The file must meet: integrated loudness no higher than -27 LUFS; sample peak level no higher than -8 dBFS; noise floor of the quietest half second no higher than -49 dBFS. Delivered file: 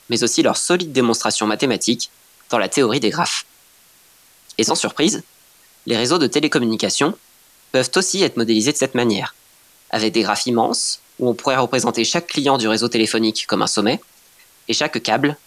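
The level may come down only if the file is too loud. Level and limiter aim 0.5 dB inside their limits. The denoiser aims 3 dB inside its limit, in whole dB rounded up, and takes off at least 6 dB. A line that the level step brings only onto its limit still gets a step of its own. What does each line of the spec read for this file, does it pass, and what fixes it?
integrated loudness -18.0 LUFS: fail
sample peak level -3.0 dBFS: fail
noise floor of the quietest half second -51 dBFS: pass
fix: trim -9.5 dB

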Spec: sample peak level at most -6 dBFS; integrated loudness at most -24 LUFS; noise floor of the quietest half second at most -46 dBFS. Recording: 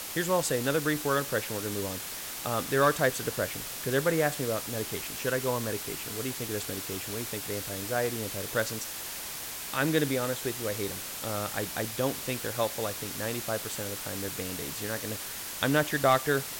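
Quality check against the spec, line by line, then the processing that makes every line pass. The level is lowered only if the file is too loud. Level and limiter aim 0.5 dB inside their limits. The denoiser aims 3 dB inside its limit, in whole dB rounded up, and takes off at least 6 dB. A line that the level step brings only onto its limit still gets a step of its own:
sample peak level -13.0 dBFS: pass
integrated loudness -30.0 LUFS: pass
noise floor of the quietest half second -38 dBFS: fail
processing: noise reduction 11 dB, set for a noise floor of -38 dBFS

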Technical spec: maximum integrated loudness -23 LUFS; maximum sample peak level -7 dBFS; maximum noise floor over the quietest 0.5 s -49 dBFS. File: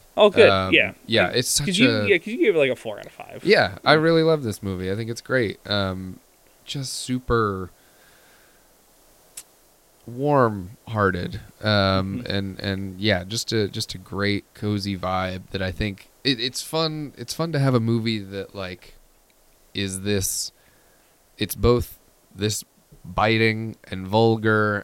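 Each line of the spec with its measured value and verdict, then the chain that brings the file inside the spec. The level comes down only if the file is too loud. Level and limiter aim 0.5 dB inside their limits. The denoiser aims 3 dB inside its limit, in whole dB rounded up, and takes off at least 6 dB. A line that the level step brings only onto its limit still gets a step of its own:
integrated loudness -22.0 LUFS: fail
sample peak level -3.0 dBFS: fail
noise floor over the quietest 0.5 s -57 dBFS: pass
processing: trim -1.5 dB; peak limiter -7.5 dBFS

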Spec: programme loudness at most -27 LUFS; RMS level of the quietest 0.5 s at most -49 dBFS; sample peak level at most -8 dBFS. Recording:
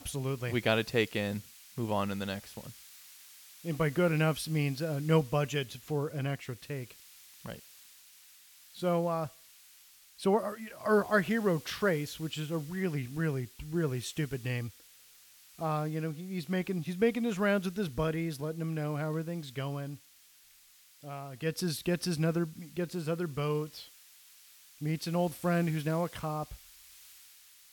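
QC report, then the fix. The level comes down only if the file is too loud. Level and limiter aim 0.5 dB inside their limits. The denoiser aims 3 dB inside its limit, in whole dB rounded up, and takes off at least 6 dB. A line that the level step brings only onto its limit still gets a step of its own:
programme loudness -33.0 LUFS: pass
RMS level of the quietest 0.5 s -60 dBFS: pass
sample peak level -13.5 dBFS: pass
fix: none needed

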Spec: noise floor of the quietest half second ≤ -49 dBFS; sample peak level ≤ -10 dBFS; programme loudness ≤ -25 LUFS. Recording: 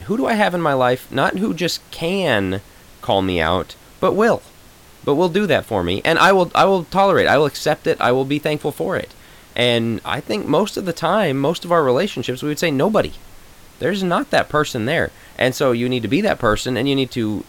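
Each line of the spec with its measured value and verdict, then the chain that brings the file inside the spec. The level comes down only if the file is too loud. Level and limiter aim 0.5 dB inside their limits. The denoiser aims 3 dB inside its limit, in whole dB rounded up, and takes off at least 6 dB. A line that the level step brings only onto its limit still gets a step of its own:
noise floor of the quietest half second -45 dBFS: fail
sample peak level -4.0 dBFS: fail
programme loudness -18.0 LUFS: fail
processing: trim -7.5 dB

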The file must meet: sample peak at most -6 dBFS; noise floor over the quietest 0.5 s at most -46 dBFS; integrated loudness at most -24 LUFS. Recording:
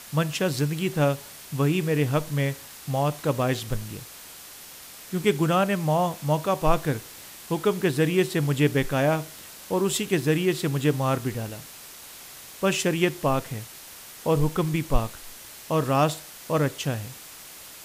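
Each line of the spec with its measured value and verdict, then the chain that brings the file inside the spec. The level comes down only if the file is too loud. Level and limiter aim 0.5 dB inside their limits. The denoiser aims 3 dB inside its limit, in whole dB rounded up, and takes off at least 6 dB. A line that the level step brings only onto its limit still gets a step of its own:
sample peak -7.0 dBFS: pass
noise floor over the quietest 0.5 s -44 dBFS: fail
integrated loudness -25.5 LUFS: pass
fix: noise reduction 6 dB, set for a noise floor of -44 dBFS

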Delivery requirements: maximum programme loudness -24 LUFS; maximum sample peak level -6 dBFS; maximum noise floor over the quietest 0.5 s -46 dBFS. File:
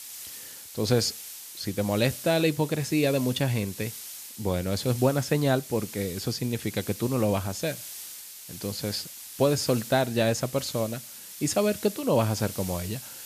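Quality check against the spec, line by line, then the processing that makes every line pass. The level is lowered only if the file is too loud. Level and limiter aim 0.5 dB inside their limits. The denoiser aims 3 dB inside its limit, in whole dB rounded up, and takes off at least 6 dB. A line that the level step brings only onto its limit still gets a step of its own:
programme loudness -27.5 LUFS: pass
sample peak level -9.5 dBFS: pass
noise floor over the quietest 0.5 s -42 dBFS: fail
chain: noise reduction 7 dB, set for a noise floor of -42 dBFS

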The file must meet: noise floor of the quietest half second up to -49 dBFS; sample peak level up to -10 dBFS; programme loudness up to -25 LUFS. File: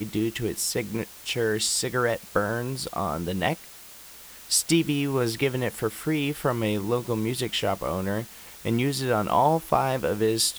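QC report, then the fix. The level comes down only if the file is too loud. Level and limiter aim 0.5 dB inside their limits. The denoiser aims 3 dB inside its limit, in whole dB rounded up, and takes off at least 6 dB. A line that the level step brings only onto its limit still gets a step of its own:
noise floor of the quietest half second -46 dBFS: fail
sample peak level -7.0 dBFS: fail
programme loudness -26.0 LUFS: pass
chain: noise reduction 6 dB, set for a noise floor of -46 dBFS; peak limiter -10.5 dBFS

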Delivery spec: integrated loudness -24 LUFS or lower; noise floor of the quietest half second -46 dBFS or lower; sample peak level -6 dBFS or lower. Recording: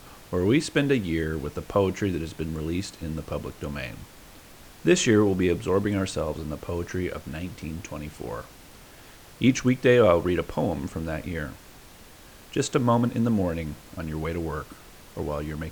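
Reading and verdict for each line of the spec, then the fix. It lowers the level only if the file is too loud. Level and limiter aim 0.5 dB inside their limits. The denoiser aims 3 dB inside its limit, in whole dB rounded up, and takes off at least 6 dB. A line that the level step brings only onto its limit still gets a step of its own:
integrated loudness -26.0 LUFS: pass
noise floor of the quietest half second -48 dBFS: pass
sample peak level -7.0 dBFS: pass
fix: none needed

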